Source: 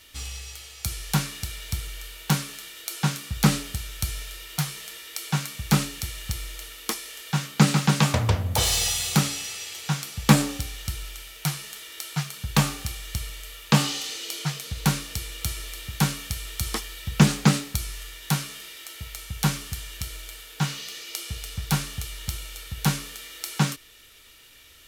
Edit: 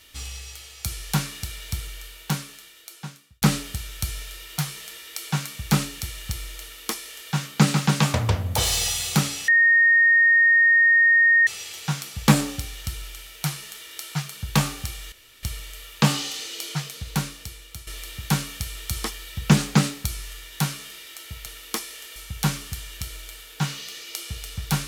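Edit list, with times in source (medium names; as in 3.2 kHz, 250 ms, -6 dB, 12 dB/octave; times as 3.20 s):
1.83–3.42 s: fade out
6.61–7.31 s: copy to 19.16 s
9.48 s: add tone 1.85 kHz -13 dBFS 1.99 s
13.13 s: insert room tone 0.31 s
14.42–15.57 s: fade out, to -12.5 dB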